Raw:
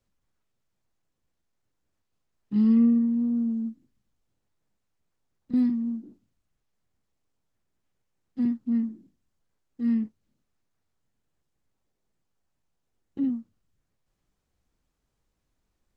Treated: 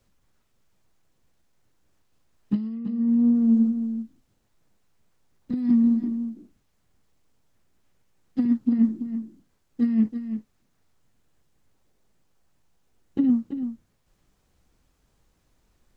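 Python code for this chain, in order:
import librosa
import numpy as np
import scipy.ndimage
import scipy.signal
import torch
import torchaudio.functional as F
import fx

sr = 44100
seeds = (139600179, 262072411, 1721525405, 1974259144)

p1 = fx.over_compress(x, sr, threshold_db=-26.0, ratio=-0.5)
p2 = p1 + fx.echo_single(p1, sr, ms=333, db=-9.5, dry=0)
y = p2 * librosa.db_to_amplitude(6.5)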